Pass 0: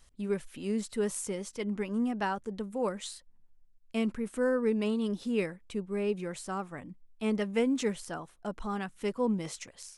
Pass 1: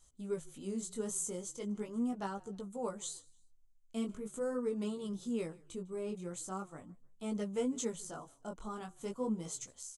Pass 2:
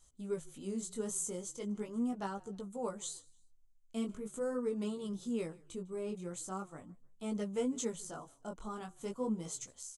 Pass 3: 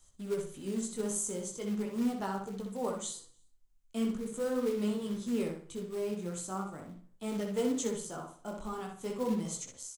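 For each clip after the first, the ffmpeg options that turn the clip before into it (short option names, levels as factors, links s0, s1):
-filter_complex "[0:a]superequalizer=11b=0.398:12b=0.447:15b=3.16:16b=1.78,asplit=3[s0][s1][s2];[s1]adelay=153,afreqshift=-39,volume=0.0631[s3];[s2]adelay=306,afreqshift=-78,volume=0.0245[s4];[s0][s3][s4]amix=inputs=3:normalize=0,flanger=delay=15:depth=8:speed=0.4,volume=0.631"
-af anull
-filter_complex "[0:a]acrossover=split=160|830[s0][s1][s2];[s1]acrusher=bits=4:mode=log:mix=0:aa=0.000001[s3];[s0][s3][s2]amix=inputs=3:normalize=0,asplit=2[s4][s5];[s5]adelay=62,lowpass=f=4100:p=1,volume=0.631,asplit=2[s6][s7];[s7]adelay=62,lowpass=f=4100:p=1,volume=0.35,asplit=2[s8][s9];[s9]adelay=62,lowpass=f=4100:p=1,volume=0.35,asplit=2[s10][s11];[s11]adelay=62,lowpass=f=4100:p=1,volume=0.35[s12];[s4][s6][s8][s10][s12]amix=inputs=5:normalize=0,volume=1.33"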